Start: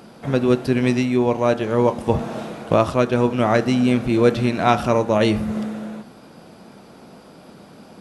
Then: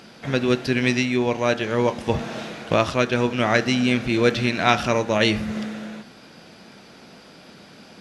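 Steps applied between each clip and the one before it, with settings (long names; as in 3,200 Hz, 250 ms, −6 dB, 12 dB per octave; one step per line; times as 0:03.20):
flat-topped bell 3,200 Hz +9 dB 2.4 octaves
level −3.5 dB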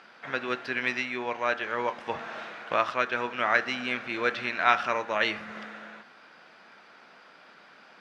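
resonant band-pass 1,400 Hz, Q 1.3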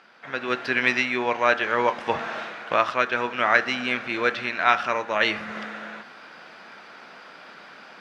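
automatic gain control gain up to 10 dB
level −1.5 dB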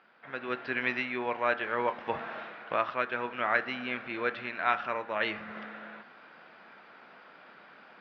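Bessel low-pass filter 2,800 Hz, order 8
level −7.5 dB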